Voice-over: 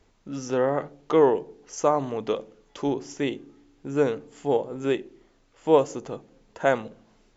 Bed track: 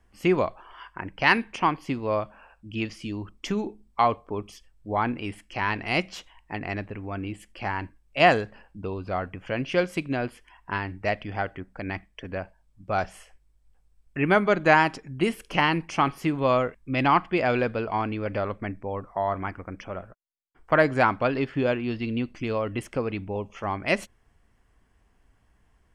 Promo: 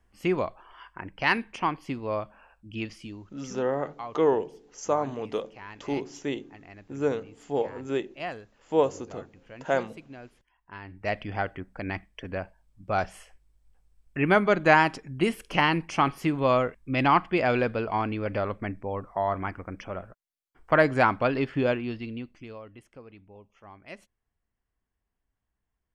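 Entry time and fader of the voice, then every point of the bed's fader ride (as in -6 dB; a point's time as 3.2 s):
3.05 s, -4.0 dB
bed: 2.97 s -4 dB
3.42 s -17 dB
10.66 s -17 dB
11.17 s -0.5 dB
21.7 s -0.5 dB
22.81 s -19.5 dB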